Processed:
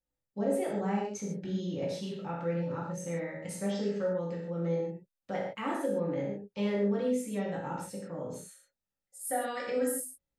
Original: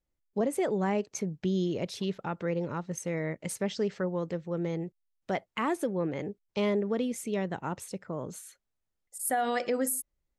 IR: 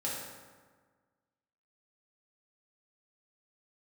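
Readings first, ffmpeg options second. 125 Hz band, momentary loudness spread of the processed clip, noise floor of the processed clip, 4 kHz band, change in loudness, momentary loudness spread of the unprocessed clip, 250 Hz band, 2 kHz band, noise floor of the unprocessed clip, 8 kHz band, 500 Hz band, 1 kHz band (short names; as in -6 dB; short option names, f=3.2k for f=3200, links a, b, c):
-1.5 dB, 9 LU, under -85 dBFS, -4.5 dB, -1.5 dB, 9 LU, -1.5 dB, -4.0 dB, -83 dBFS, -4.0 dB, -1.0 dB, -3.5 dB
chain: -filter_complex "[1:a]atrim=start_sample=2205,afade=t=out:st=0.21:d=0.01,atrim=end_sample=9702[a];[0:a][a]afir=irnorm=-1:irlink=0,volume=-6.5dB"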